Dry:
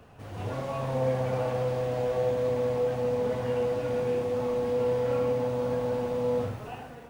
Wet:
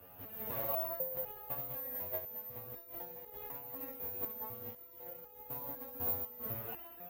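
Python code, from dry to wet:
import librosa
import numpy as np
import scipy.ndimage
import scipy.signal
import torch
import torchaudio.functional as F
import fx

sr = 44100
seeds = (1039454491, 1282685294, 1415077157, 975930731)

y = fx.octave_divider(x, sr, octaves=2, level_db=-1.0)
y = scipy.signal.sosfilt(scipy.signal.butter(4, 45.0, 'highpass', fs=sr, output='sos'), y)
y = fx.bass_treble(y, sr, bass_db=-6, treble_db=-8)
y = fx.over_compress(y, sr, threshold_db=-32.0, ratio=-0.5)
y = fx.quant_companded(y, sr, bits=6)
y = (np.kron(scipy.signal.resample_poly(y, 1, 3), np.eye(3)[0]) * 3)[:len(y)]
y = fx.resonator_held(y, sr, hz=4.0, low_hz=91.0, high_hz=420.0)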